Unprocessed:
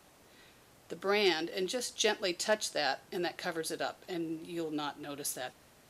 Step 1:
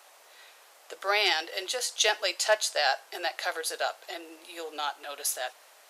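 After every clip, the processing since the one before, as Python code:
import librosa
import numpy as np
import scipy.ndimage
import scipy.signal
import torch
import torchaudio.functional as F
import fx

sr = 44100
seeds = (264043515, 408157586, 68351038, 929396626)

y = scipy.signal.sosfilt(scipy.signal.butter(4, 560.0, 'highpass', fs=sr, output='sos'), x)
y = y * librosa.db_to_amplitude(7.0)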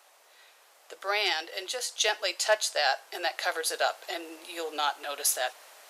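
y = fx.rider(x, sr, range_db=4, speed_s=2.0)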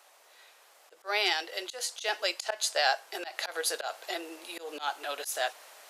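y = fx.auto_swell(x, sr, attack_ms=137.0)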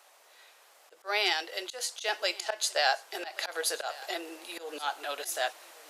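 y = x + 10.0 ** (-20.0 / 20.0) * np.pad(x, (int(1130 * sr / 1000.0), 0))[:len(x)]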